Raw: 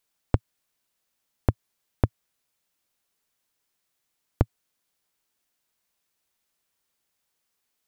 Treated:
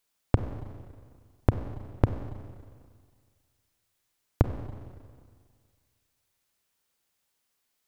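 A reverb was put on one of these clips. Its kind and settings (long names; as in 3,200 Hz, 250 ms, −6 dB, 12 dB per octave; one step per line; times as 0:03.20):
four-comb reverb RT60 1.9 s, combs from 31 ms, DRR 7.5 dB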